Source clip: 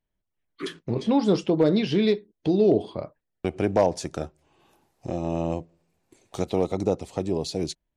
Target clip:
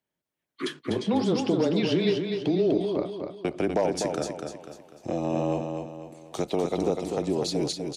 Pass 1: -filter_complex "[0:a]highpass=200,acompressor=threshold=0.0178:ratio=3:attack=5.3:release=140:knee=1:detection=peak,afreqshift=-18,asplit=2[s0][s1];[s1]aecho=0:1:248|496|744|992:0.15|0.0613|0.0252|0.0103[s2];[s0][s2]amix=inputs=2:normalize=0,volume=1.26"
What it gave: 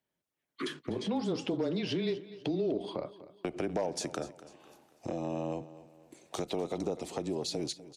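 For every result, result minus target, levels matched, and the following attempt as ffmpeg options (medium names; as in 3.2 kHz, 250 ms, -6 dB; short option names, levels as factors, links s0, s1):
compression: peak gain reduction +7.5 dB; echo-to-direct -11 dB
-filter_complex "[0:a]highpass=200,acompressor=threshold=0.0668:ratio=3:attack=5.3:release=140:knee=1:detection=peak,afreqshift=-18,asplit=2[s0][s1];[s1]aecho=0:1:248|496|744|992:0.15|0.0613|0.0252|0.0103[s2];[s0][s2]amix=inputs=2:normalize=0,volume=1.26"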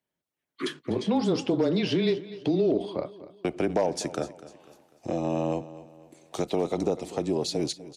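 echo-to-direct -11 dB
-filter_complex "[0:a]highpass=200,acompressor=threshold=0.0668:ratio=3:attack=5.3:release=140:knee=1:detection=peak,afreqshift=-18,asplit=2[s0][s1];[s1]aecho=0:1:248|496|744|992|1240:0.531|0.218|0.0892|0.0366|0.015[s2];[s0][s2]amix=inputs=2:normalize=0,volume=1.26"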